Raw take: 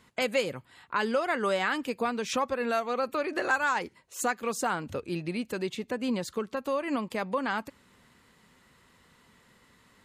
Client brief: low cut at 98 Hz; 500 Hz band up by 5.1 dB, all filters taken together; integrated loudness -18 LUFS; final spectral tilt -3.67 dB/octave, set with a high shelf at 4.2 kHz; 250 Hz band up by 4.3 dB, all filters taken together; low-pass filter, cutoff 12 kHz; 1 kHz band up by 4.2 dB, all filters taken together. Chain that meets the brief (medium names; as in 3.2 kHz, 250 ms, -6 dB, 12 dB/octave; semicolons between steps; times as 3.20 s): high-pass 98 Hz; low-pass 12 kHz; peaking EQ 250 Hz +4 dB; peaking EQ 500 Hz +4 dB; peaking EQ 1 kHz +4.5 dB; treble shelf 4.2 kHz -7 dB; trim +8.5 dB